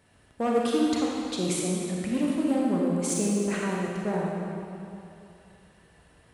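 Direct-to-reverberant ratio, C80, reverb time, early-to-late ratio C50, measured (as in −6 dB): −3.0 dB, −0.5 dB, 2.7 s, −2.0 dB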